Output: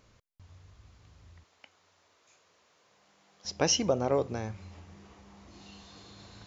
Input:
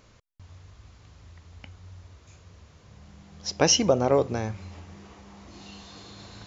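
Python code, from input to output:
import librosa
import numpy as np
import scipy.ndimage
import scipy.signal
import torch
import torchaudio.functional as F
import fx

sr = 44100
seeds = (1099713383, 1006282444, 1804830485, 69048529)

y = fx.highpass(x, sr, hz=470.0, slope=12, at=(1.44, 3.45))
y = y * librosa.db_to_amplitude(-6.0)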